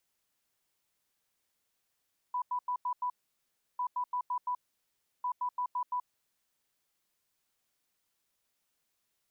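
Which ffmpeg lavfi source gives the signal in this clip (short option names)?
-f lavfi -i "aevalsrc='0.0335*sin(2*PI*990*t)*clip(min(mod(mod(t,1.45),0.17),0.08-mod(mod(t,1.45),0.17))/0.005,0,1)*lt(mod(t,1.45),0.85)':d=4.35:s=44100"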